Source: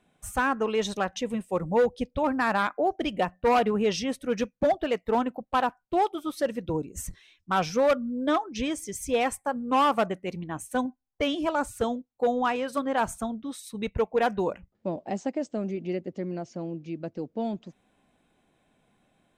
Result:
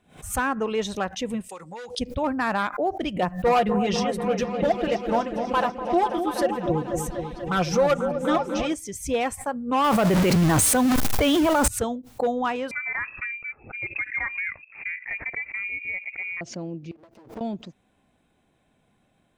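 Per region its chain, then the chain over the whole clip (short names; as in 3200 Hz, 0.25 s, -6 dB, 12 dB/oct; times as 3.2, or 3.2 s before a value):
1.49–1.99 weighting filter ITU-R 468 + compressor 10:1, threshold -33 dBFS + notch 630 Hz, Q 6.1
3.22–8.74 comb 5.8 ms, depth 70% + repeats that get brighter 0.245 s, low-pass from 750 Hz, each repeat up 1 oct, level -6 dB
9.84–11.68 zero-crossing step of -32 dBFS + companded quantiser 6-bit + fast leveller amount 100%
12.71–16.41 inverted band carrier 2600 Hz + compressor 2.5:1, threshold -26 dBFS
16.91–17.41 minimum comb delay 9.1 ms + HPF 350 Hz 6 dB/oct + compressor 8:1, threshold -48 dBFS
whole clip: bell 81 Hz +5.5 dB 1.6 oct; backwards sustainer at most 140 dB/s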